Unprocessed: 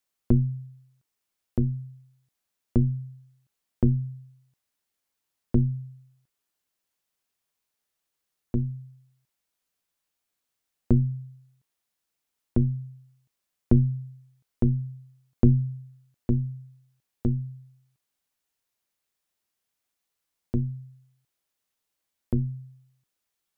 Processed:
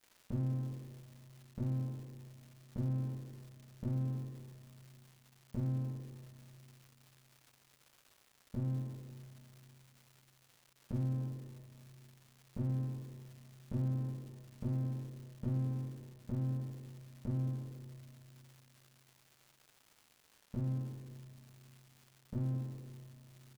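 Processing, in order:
lower of the sound and its delayed copy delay 5.1 ms
high-pass filter 42 Hz
reversed playback
downward compressor 6 to 1, threshold −41 dBFS, peak gain reduction 23.5 dB
reversed playback
formants moved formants −3 semitones
on a send: echo with shifted repeats 91 ms, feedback 50%, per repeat +91 Hz, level −17 dB
on the sum: spring reverb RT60 3.3 s, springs 30/38 ms, chirp 25 ms, DRR 7 dB
surface crackle 400 per second −56 dBFS
level +5 dB

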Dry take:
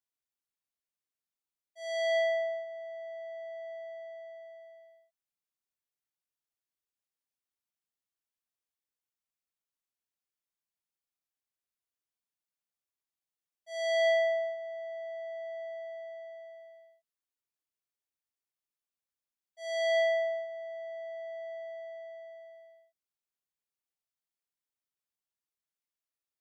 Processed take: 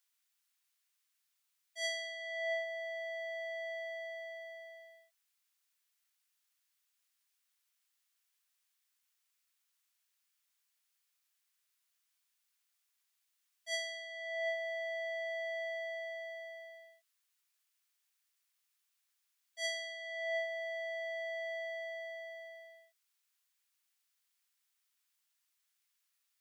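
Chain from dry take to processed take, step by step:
high-pass filter 1,400 Hz 12 dB per octave
compressor whose output falls as the input rises −46 dBFS, ratio −1
level +7.5 dB

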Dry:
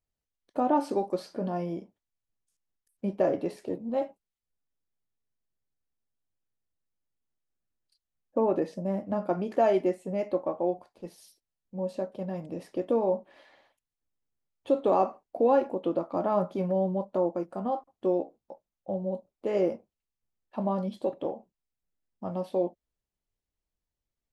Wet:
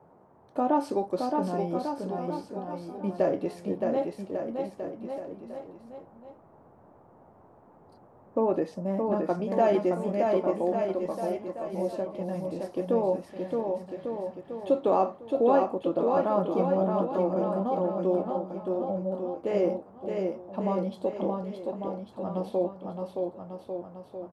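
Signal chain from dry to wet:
noise in a band 76–910 Hz −58 dBFS
bouncing-ball delay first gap 620 ms, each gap 0.85×, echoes 5

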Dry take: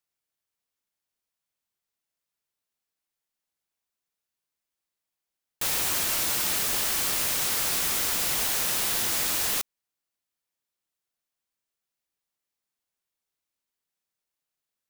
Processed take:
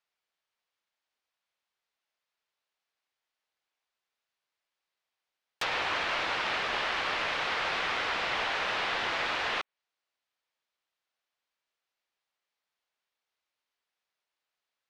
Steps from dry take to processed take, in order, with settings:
treble cut that deepens with the level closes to 2,700 Hz, closed at −25.5 dBFS
three-way crossover with the lows and the highs turned down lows −13 dB, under 450 Hz, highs −19 dB, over 4,900 Hz
level +5.5 dB

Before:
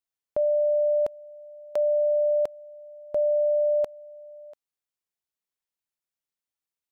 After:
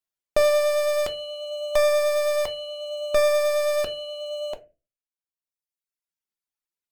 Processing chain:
stylus tracing distortion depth 0.43 ms
in parallel at −8 dB: fuzz pedal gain 49 dB, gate −51 dBFS
on the sum: pitch vibrato 9.3 Hz 6.6 cents
reverb reduction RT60 1.6 s
on a send at −6 dB: convolution reverb RT60 0.30 s, pre-delay 3 ms

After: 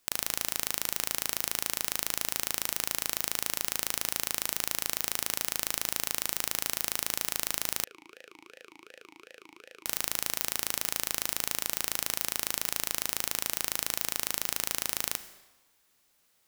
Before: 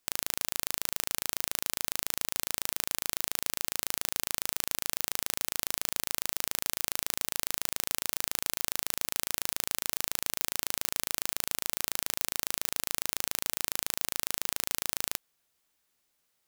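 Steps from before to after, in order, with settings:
brickwall limiter −7.5 dBFS, peak gain reduction 5.5 dB
convolution reverb RT60 1.2 s, pre-delay 34 ms, DRR 11.5 dB
0:07.84–0:09.86: formant filter swept between two vowels e-u 2.7 Hz
level +6.5 dB

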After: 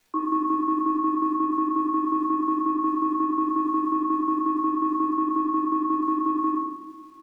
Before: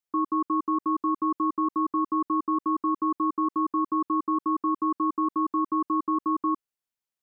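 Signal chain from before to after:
Butterworth high-pass 170 Hz 72 dB per octave
transient designer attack +5 dB, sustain −6 dB
brickwall limiter −26.5 dBFS, peak gain reduction 13.5 dB
surface crackle 140 per second −57 dBFS
single-tap delay 1,094 ms −23.5 dB
rectangular room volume 410 cubic metres, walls mixed, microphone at 3.2 metres
level +3 dB

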